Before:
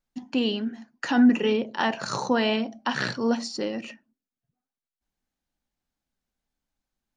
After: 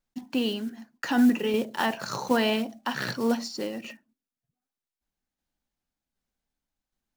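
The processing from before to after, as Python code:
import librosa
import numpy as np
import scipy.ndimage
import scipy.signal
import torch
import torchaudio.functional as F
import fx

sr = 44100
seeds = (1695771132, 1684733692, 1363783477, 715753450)

y = fx.block_float(x, sr, bits=5)
y = fx.tremolo_shape(y, sr, shape='saw_down', hz=1.3, depth_pct=40)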